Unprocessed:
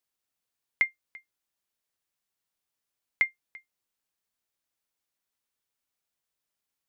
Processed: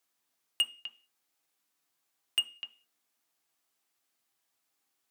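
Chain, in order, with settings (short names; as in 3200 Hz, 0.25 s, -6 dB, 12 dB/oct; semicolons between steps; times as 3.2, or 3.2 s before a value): HPF 99 Hz 24 dB/oct; bell 240 Hz -5 dB 0.87 oct; in parallel at +2.5 dB: compressor, threshold -37 dBFS, peak gain reduction 16 dB; on the sum: overloaded stage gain 21 dB; on a send at -7 dB: reverb RT60 0.40 s, pre-delay 3 ms; on the sum: speed mistake 33 rpm record played at 45 rpm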